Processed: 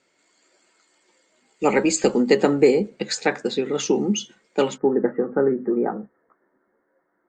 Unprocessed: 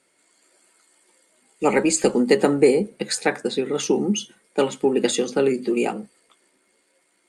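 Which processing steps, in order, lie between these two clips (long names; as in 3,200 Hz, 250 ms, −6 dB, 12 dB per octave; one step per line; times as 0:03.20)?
Butterworth low-pass 7,600 Hz 72 dB per octave, from 0:04.76 1,800 Hz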